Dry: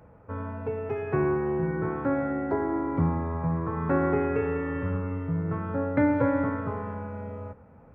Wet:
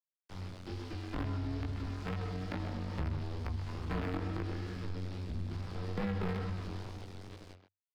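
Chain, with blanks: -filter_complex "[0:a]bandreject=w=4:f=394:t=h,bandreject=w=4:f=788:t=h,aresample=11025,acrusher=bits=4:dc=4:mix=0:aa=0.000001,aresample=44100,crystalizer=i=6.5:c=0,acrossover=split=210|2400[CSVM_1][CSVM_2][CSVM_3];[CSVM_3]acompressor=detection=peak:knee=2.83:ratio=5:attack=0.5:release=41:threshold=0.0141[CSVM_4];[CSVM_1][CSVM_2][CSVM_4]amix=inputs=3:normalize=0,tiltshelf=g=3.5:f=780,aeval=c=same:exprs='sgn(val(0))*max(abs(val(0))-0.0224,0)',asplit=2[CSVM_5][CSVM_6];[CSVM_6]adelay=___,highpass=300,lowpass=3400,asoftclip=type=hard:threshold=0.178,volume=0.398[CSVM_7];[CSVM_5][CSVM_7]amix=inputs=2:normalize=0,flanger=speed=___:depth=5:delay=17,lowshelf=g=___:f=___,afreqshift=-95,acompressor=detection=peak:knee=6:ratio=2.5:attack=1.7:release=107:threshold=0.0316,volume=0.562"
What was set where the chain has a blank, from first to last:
130, 2.3, 7, 450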